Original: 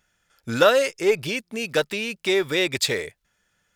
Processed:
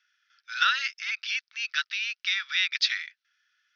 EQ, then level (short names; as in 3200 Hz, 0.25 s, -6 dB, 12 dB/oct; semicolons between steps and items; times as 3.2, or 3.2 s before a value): elliptic high-pass 1400 Hz, stop band 80 dB; steep low-pass 6000 Hz 96 dB/oct; 0.0 dB